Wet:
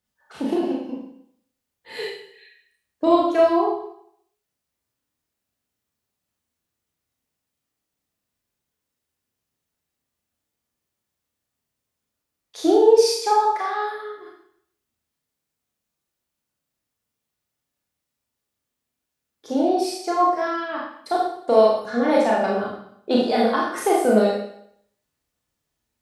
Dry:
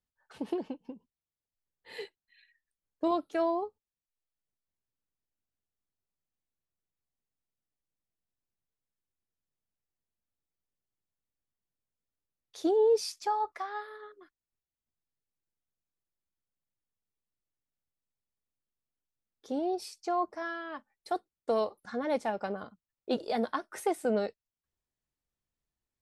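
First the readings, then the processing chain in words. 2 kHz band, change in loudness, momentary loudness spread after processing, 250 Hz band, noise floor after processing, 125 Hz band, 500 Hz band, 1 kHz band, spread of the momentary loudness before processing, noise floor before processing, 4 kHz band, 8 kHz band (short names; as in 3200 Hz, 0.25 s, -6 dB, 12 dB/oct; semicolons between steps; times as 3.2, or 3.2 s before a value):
+11.5 dB, +12.0 dB, 16 LU, +13.0 dB, -82 dBFS, n/a, +12.0 dB, +12.5 dB, 17 LU, under -85 dBFS, +13.0 dB, +13.0 dB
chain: HPF 52 Hz; Schroeder reverb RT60 0.67 s, combs from 26 ms, DRR -4 dB; gain +7.5 dB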